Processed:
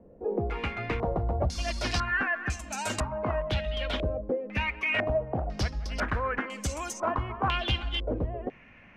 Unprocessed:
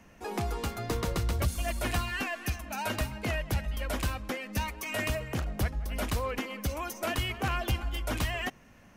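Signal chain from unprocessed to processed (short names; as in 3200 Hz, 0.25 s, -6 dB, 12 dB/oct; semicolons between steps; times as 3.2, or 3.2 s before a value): 3.11–4.2 whine 620 Hz -35 dBFS; stepped low-pass 2 Hz 490–7600 Hz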